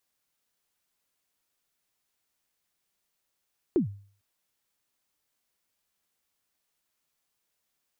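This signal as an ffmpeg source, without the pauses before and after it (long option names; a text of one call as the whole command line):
ffmpeg -f lavfi -i "aevalsrc='0.141*pow(10,-3*t/0.46)*sin(2*PI*(400*0.115/log(100/400)*(exp(log(100/400)*min(t,0.115)/0.115)-1)+100*max(t-0.115,0)))':duration=0.45:sample_rate=44100" out.wav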